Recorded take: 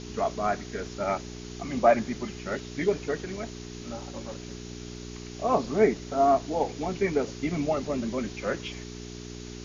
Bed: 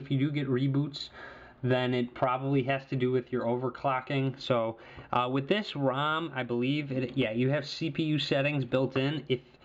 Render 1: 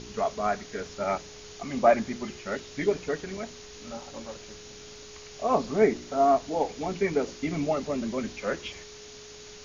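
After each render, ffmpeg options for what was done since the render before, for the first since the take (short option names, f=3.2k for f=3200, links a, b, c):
-af "bandreject=f=60:t=h:w=4,bandreject=f=120:t=h:w=4,bandreject=f=180:t=h:w=4,bandreject=f=240:t=h:w=4,bandreject=f=300:t=h:w=4,bandreject=f=360:t=h:w=4"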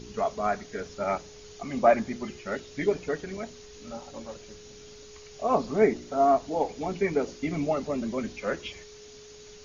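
-af "afftdn=nr=6:nf=-46"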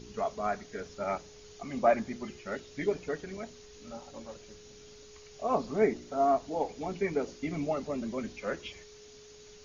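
-af "volume=-4.5dB"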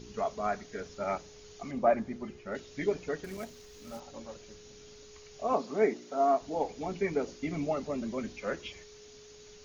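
-filter_complex "[0:a]asettb=1/sr,asplit=3[a][b][c];[a]atrim=end=1.714[d];[b]atrim=start=1.71:end=2.55,asetpts=PTS-STARTPTS,afade=t=in:d=0.004:c=qsin,afade=t=out:st=0.836:d=0.004:c=qsin,highshelf=f=2.4k:g=-11[e];[c]atrim=start=2.546[f];[d][e]acrossfade=d=0.004:c1=hsin:c2=qsin[g];[g][f]acrossfade=d=0.004:c1=qsin:c2=hsin,asettb=1/sr,asplit=3[h][i][j];[h]atrim=end=3.244[k];[i]atrim=start=3.24:end=4,asetpts=PTS-STARTPTS,afade=t=in:d=0.004:c=qsin,afade=t=out:st=0.756:d=0.004:c=qsin,acrusher=bits=3:mode=log:mix=0:aa=0.000001[l];[j]atrim=start=3.996[m];[k][l]acrossfade=d=0.004:c1=hsin:c2=qsin[n];[n][m]acrossfade=d=0.004:c1=qsin:c2=hsin,asettb=1/sr,asplit=3[o][p][q];[o]atrim=end=5.534[r];[p]atrim=start=5.53:end=6.41,asetpts=PTS-STARTPTS,afade=t=in:d=0.004:c=qsin,afade=t=out:st=0.876:d=0.004:c=qsin,highpass=230[s];[q]atrim=start=6.406[t];[r][s]acrossfade=d=0.004:c1=hsin:c2=qsin[u];[u][t]acrossfade=d=0.004:c1=qsin:c2=hsin"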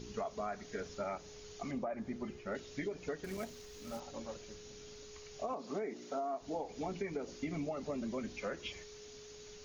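-af "alimiter=limit=-24dB:level=0:latency=1:release=194,acompressor=threshold=-36dB:ratio=4"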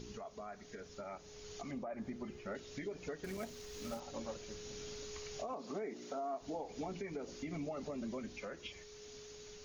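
-af "alimiter=level_in=14dB:limit=-24dB:level=0:latency=1:release=495,volume=-14dB,dynaudnorm=f=280:g=11:m=5dB"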